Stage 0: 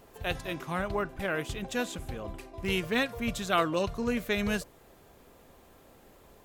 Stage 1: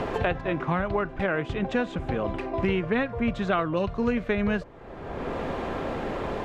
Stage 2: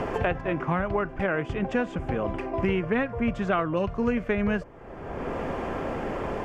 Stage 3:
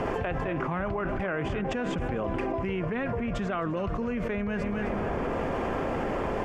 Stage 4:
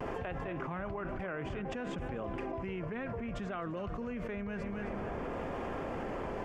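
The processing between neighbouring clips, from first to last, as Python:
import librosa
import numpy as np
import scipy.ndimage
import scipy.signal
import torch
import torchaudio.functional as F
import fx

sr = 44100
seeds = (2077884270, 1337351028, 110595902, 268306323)

y1 = scipy.signal.sosfilt(scipy.signal.butter(2, 2000.0, 'lowpass', fs=sr, output='sos'), x)
y1 = fx.band_squash(y1, sr, depth_pct=100)
y1 = y1 * librosa.db_to_amplitude(5.0)
y2 = fx.peak_eq(y1, sr, hz=3900.0, db=-13.0, octaves=0.31)
y3 = fx.echo_feedback(y2, sr, ms=262, feedback_pct=55, wet_db=-16.0)
y3 = fx.env_flatten(y3, sr, amount_pct=100)
y3 = y3 * librosa.db_to_amplitude(-8.0)
y4 = fx.vibrato(y3, sr, rate_hz=0.59, depth_cents=32.0)
y4 = y4 * librosa.db_to_amplitude(-8.5)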